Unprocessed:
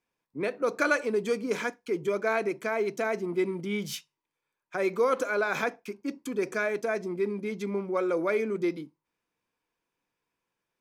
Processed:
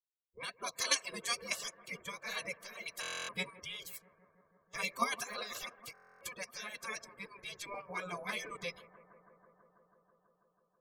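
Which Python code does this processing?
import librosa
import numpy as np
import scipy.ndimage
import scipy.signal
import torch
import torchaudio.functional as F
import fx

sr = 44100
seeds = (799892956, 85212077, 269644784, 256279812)

p1 = fx.bin_expand(x, sr, power=1.5)
p2 = fx.dereverb_blind(p1, sr, rt60_s=0.51)
p3 = fx.spec_gate(p2, sr, threshold_db=-25, keep='weak')
p4 = p3 + 0.65 * np.pad(p3, (int(1.8 * sr / 1000.0), 0))[:len(p3)]
p5 = fx.level_steps(p4, sr, step_db=22)
p6 = p4 + (p5 * librosa.db_to_amplitude(0.5))
p7 = fx.tremolo_random(p6, sr, seeds[0], hz=3.5, depth_pct=55)
p8 = p7 + fx.echo_bbd(p7, sr, ms=163, stages=2048, feedback_pct=83, wet_db=-19.0, dry=0)
p9 = fx.buffer_glitch(p8, sr, at_s=(3.01, 5.93), block=1024, repeats=11)
y = p9 * librosa.db_to_amplitude(12.0)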